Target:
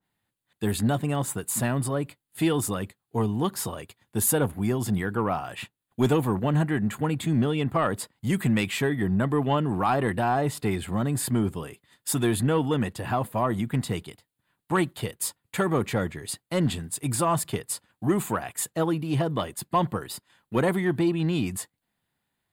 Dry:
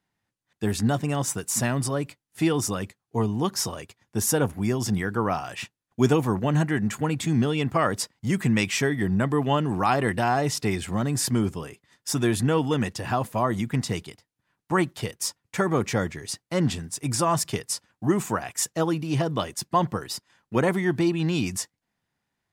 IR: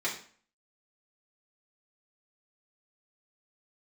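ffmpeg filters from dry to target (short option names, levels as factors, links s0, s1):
-af "asoftclip=type=tanh:threshold=0.237,aexciter=amount=1.1:drive=4:freq=3100,adynamicequalizer=threshold=0.00708:dfrequency=2200:dqfactor=0.7:tfrequency=2200:tqfactor=0.7:attack=5:release=100:ratio=0.375:range=4:mode=cutabove:tftype=highshelf"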